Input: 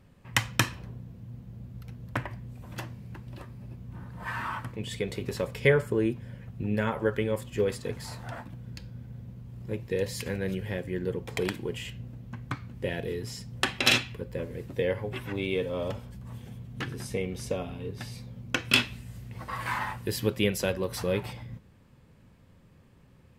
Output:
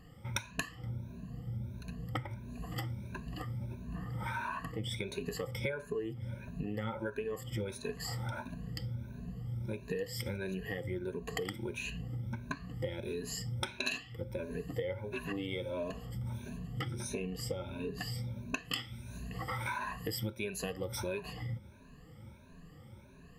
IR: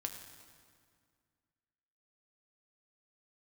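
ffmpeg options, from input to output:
-af "afftfilt=real='re*pow(10,22/40*sin(2*PI*(1.5*log(max(b,1)*sr/1024/100)/log(2)-(1.5)*(pts-256)/sr)))':imag='im*pow(10,22/40*sin(2*PI*(1.5*log(max(b,1)*sr/1024/100)/log(2)-(1.5)*(pts-256)/sr)))':win_size=1024:overlap=0.75,acompressor=threshold=-34dB:ratio=6,volume=-1dB"

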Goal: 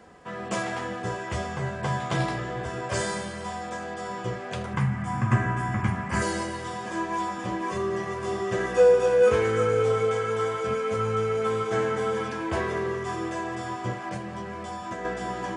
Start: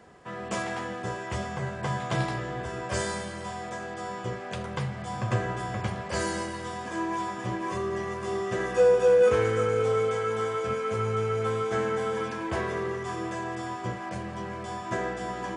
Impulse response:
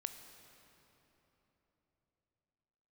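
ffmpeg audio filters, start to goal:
-filter_complex "[0:a]asettb=1/sr,asplit=3[a][b][c];[a]atrim=end=4.734[d];[b]atrim=start=4.73:end=6.22,asetpts=PTS-STARTPTS,afade=t=in:d=0.004:c=qsin,afade=t=out:st=1.486:d=0.004:c=qsin,equalizer=f=125:t=o:w=1:g=5,equalizer=f=250:t=o:w=1:g=8,equalizer=f=500:t=o:w=1:g=-12,equalizer=f=1k:t=o:w=1:g=5,equalizer=f=2k:t=o:w=1:g=5,equalizer=f=4k:t=o:w=1:g=-11[e];[c]atrim=start=6.216[f];[d][e]acrossfade=d=0.004:c1=hsin:c2=qsin[g];[g][f]acrossfade=d=0.004:c1=qsin:c2=hsin,asettb=1/sr,asplit=3[h][i][j];[h]atrim=end=14.164[k];[i]atrim=start=14.16:end=15.05,asetpts=PTS-STARTPTS,afade=t=in:d=0.004:c=qsin,afade=t=out:st=0.886:d=0.004:c=qsin,acompressor=threshold=-33dB:ratio=6[l];[j]atrim=start=15.046[m];[k][l]acrossfade=d=0.004:c1=hsin:c2=qsin[n];[n][m]acrossfade=d=0.004:c1=qsin:c2=hsin,flanger=delay=3.8:depth=9.6:regen=-58:speed=0.27:shape=sinusoidal,volume=6dB"

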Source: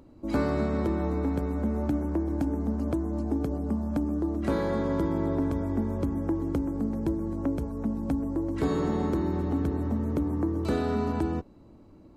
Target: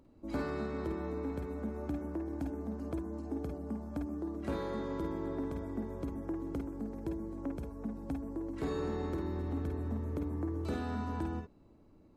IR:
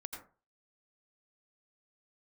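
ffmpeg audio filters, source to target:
-filter_complex "[1:a]atrim=start_sample=2205,atrim=end_sample=4410,asetrate=74970,aresample=44100[a];[0:a][a]afir=irnorm=-1:irlink=0"

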